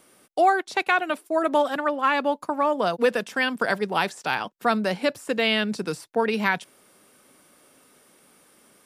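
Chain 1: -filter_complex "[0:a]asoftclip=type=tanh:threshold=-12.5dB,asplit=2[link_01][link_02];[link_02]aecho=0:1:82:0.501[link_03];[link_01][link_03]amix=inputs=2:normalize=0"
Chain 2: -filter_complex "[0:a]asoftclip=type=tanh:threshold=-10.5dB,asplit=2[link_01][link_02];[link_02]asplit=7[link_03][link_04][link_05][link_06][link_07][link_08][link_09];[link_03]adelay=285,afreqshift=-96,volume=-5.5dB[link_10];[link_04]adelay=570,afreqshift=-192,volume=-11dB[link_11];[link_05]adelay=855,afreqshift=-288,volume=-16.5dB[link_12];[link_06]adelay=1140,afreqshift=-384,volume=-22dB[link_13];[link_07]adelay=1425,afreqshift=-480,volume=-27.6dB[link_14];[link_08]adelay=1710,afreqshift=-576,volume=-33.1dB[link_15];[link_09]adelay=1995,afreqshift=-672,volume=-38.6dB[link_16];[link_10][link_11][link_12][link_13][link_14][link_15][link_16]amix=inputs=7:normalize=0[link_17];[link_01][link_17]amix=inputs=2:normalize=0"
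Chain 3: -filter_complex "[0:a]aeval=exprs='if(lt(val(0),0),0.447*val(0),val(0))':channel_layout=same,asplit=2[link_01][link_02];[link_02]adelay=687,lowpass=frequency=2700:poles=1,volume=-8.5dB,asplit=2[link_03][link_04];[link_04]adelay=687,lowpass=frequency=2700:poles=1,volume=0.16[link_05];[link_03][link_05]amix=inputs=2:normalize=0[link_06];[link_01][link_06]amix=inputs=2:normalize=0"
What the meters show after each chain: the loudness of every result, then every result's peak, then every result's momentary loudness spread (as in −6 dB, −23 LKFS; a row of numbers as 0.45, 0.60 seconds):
−24.5, −24.0, −26.0 LKFS; −10.5, −8.0, −8.0 dBFS; 5, 8, 11 LU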